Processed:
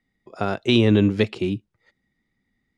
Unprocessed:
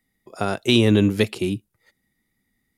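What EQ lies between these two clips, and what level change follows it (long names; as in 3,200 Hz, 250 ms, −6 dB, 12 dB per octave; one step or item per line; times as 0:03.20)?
high-frequency loss of the air 120 metres
0.0 dB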